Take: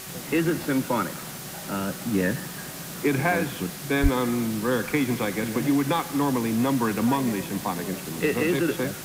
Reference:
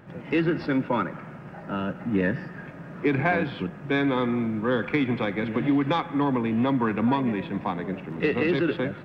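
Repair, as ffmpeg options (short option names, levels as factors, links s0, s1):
-filter_complex "[0:a]bandreject=f=378.2:t=h:w=4,bandreject=f=756.4:t=h:w=4,bandreject=f=1134.6:t=h:w=4,bandreject=f=1512.8:t=h:w=4,bandreject=f=1891:t=h:w=4,asplit=3[s0][s1][s2];[s0]afade=t=out:st=4.02:d=0.02[s3];[s1]highpass=f=140:w=0.5412,highpass=f=140:w=1.3066,afade=t=in:st=4.02:d=0.02,afade=t=out:st=4.14:d=0.02[s4];[s2]afade=t=in:st=4.14:d=0.02[s5];[s3][s4][s5]amix=inputs=3:normalize=0,afwtdn=0.013"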